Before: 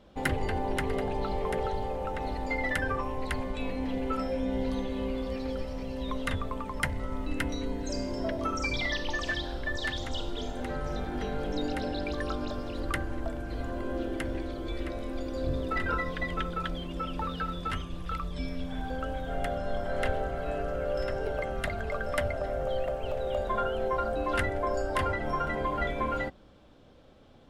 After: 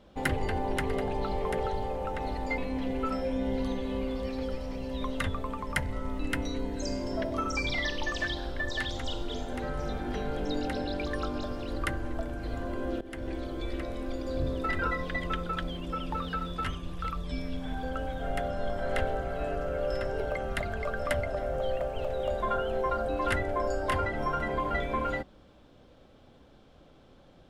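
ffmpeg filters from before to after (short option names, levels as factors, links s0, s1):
-filter_complex "[0:a]asplit=3[s0][s1][s2];[s0]atrim=end=2.582[s3];[s1]atrim=start=3.648:end=14.08,asetpts=PTS-STARTPTS,afade=t=out:st=10.428:d=0.004:c=hsin:silence=0.149624[s4];[s2]atrim=start=14.08,asetpts=PTS-STARTPTS,afade=t=in:d=0.35:silence=0.149624[s5];[s4][s5]concat=n=2:v=0:a=1[s6];[s3][s6]acrossfade=d=0.004:c1=hsin:c2=hsin"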